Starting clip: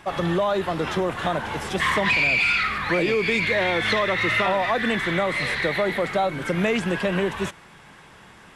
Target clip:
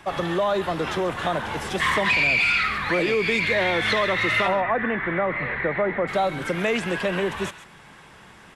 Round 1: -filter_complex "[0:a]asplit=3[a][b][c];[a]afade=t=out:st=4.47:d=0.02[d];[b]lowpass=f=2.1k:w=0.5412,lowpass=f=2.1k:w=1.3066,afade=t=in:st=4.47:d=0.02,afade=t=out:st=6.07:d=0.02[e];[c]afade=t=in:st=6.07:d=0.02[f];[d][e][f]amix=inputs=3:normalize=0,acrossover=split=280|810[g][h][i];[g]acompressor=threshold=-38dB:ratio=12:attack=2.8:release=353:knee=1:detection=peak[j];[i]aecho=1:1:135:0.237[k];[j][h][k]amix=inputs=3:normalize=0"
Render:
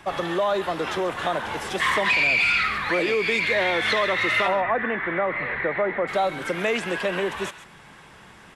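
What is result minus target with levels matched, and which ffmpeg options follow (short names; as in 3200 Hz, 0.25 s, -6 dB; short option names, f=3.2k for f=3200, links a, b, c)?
compressor: peak gain reduction +8 dB
-filter_complex "[0:a]asplit=3[a][b][c];[a]afade=t=out:st=4.47:d=0.02[d];[b]lowpass=f=2.1k:w=0.5412,lowpass=f=2.1k:w=1.3066,afade=t=in:st=4.47:d=0.02,afade=t=out:st=6.07:d=0.02[e];[c]afade=t=in:st=6.07:d=0.02[f];[d][e][f]amix=inputs=3:normalize=0,acrossover=split=280|810[g][h][i];[g]acompressor=threshold=-29dB:ratio=12:attack=2.8:release=353:knee=1:detection=peak[j];[i]aecho=1:1:135:0.237[k];[j][h][k]amix=inputs=3:normalize=0"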